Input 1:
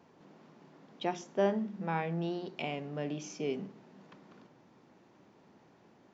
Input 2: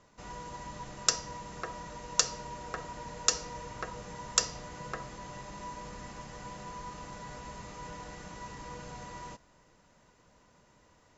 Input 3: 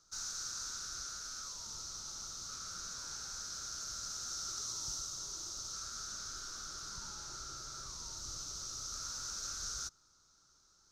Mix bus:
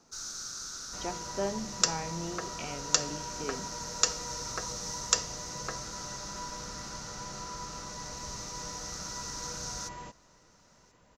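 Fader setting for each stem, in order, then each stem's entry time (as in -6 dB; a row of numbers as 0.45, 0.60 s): -4.0, +0.5, +1.5 dB; 0.00, 0.75, 0.00 s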